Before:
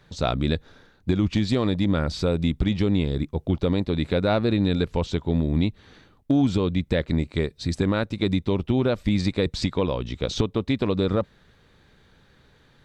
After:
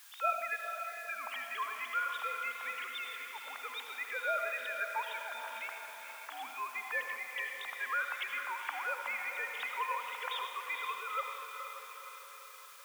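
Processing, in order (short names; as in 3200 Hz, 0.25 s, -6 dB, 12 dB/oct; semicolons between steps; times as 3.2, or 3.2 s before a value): sine-wave speech; diffused feedback echo 0.479 s, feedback 56%, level -7 dB; on a send at -6 dB: reverb, pre-delay 65 ms; on the sum: added noise white -56 dBFS; inverse Chebyshev high-pass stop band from 360 Hz, stop band 50 dB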